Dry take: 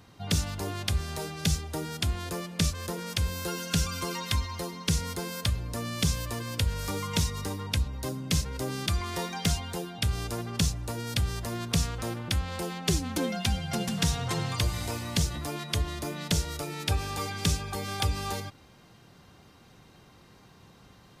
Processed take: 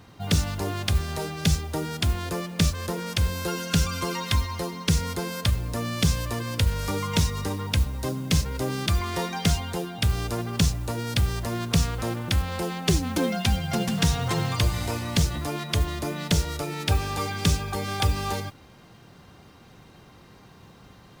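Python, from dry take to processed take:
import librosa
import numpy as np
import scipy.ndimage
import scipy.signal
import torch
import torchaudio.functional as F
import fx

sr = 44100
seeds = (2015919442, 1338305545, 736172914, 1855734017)

y = fx.high_shelf(x, sr, hz=4200.0, db=-5.0)
y = fx.mod_noise(y, sr, seeds[0], snr_db=23)
y = y * librosa.db_to_amplitude(5.0)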